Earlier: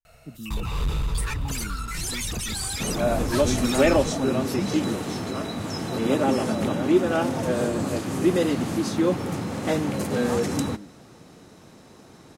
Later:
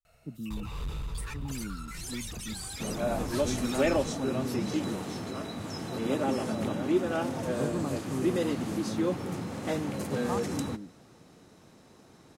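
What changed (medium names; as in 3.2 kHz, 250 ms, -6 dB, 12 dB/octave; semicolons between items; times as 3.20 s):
first sound -10.0 dB; second sound -7.0 dB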